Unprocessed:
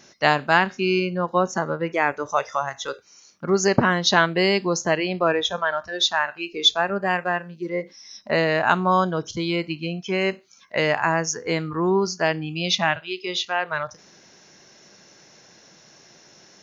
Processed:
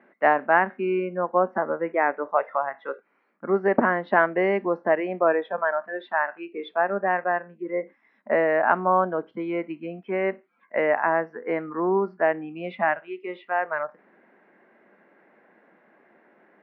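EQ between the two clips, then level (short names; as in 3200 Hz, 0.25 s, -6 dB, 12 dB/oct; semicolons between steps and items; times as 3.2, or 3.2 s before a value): elliptic band-pass 220–2000 Hz, stop band 50 dB; dynamic EQ 650 Hz, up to +4 dB, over -35 dBFS, Q 1.8; air absorption 140 m; -1.5 dB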